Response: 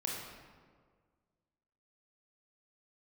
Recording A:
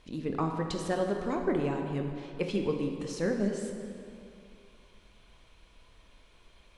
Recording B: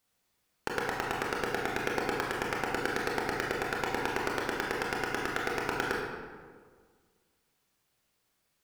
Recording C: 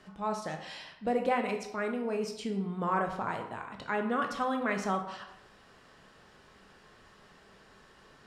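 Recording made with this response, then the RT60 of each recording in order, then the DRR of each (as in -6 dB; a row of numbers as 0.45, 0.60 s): B; 2.6, 1.7, 0.80 s; 3.0, -2.5, 3.5 dB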